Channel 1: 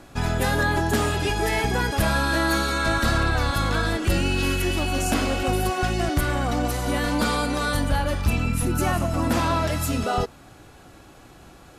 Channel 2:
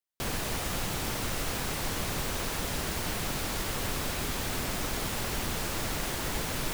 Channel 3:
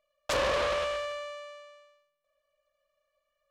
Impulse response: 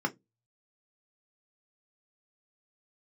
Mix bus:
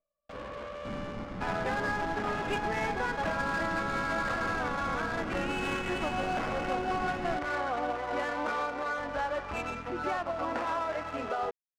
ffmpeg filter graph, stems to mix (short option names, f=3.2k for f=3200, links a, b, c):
-filter_complex "[0:a]acrossover=split=400 2800:gain=0.0708 1 0.0708[a][b][c];[a][b][c]amix=inputs=3:normalize=0,alimiter=limit=-21.5dB:level=0:latency=1:release=285,aeval=exprs='val(0)*gte(abs(val(0)),0.00841)':c=same,adelay=1250,volume=-0.5dB[d];[1:a]adelay=650,volume=-9.5dB,asplit=2[e][f];[f]volume=-3dB[g];[2:a]alimiter=level_in=1.5dB:limit=-24dB:level=0:latency=1:release=16,volume=-1.5dB,volume=-4.5dB,asplit=2[h][i];[i]volume=-7.5dB[j];[3:a]atrim=start_sample=2205[k];[g][j]amix=inputs=2:normalize=0[l];[l][k]afir=irnorm=-1:irlink=0[m];[d][e][h][m]amix=inputs=4:normalize=0,adynamicsmooth=sensitivity=6:basefreq=1.2k"